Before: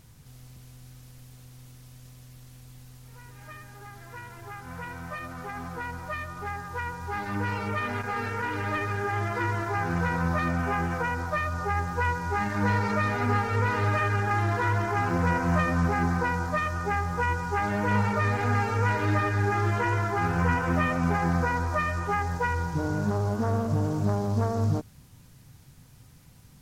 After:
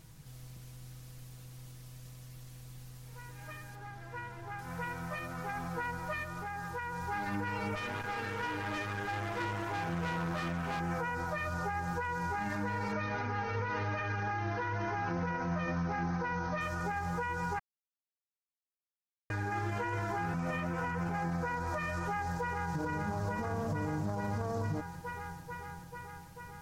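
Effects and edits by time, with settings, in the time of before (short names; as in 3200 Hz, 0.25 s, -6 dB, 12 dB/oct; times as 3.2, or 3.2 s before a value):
3.75–4.59 LPF 3200 Hz 6 dB/oct
6.23–6.96 compressor 4:1, threshold -34 dBFS
7.75–10.8 tube stage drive 29 dB, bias 0.6
12.92–16.61 brick-wall FIR low-pass 6500 Hz
17.59–19.3 mute
20.34–21.09 reverse
21.98–22.75 echo throw 0.44 s, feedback 75%, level -2.5 dB
whole clip: comb 6.2 ms, depth 42%; compressor 2:1, threshold -30 dBFS; limiter -24.5 dBFS; gain -2 dB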